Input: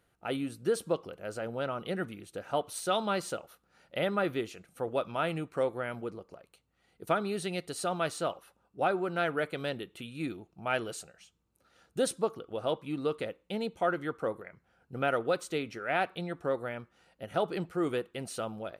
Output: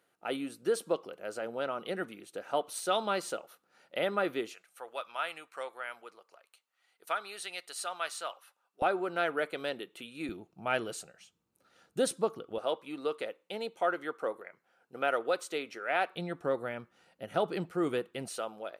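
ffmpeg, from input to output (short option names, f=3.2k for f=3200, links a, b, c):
-af "asetnsamples=n=441:p=0,asendcmd='4.54 highpass f 1000;8.82 highpass f 300;10.29 highpass f 130;12.58 highpass f 390;16.15 highpass f 130;18.28 highpass f 390',highpass=270"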